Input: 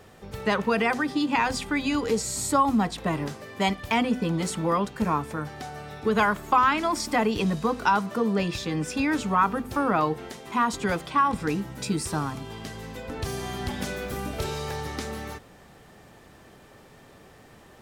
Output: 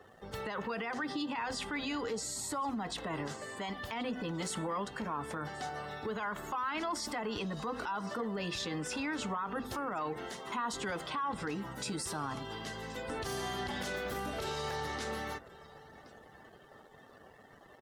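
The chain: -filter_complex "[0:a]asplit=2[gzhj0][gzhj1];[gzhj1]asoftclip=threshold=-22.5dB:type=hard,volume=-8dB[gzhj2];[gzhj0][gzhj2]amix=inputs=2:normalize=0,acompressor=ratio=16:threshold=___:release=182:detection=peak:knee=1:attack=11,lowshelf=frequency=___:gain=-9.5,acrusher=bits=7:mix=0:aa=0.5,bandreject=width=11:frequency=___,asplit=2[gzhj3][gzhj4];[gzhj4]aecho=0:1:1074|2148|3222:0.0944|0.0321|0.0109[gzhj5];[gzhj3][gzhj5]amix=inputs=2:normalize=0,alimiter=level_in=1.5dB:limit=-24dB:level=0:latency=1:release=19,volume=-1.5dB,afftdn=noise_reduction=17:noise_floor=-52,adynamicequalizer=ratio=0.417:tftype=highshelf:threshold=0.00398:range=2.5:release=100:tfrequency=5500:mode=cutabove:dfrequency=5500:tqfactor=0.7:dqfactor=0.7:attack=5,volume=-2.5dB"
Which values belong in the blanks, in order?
-25dB, 340, 2.4k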